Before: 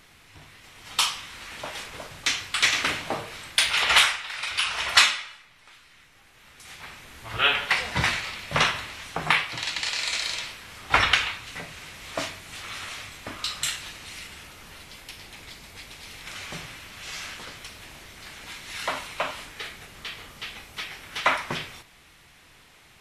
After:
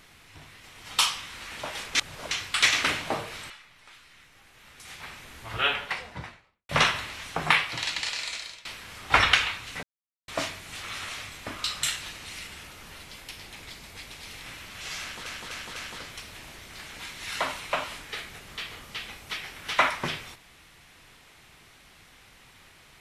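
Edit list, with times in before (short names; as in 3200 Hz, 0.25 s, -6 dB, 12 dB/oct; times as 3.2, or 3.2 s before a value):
1.95–2.31 reverse
3.5–5.3 cut
7.05–8.49 studio fade out
9.65–10.45 fade out, to -22 dB
11.63–12.08 mute
16.26–16.68 cut
17.23–17.48 loop, 4 plays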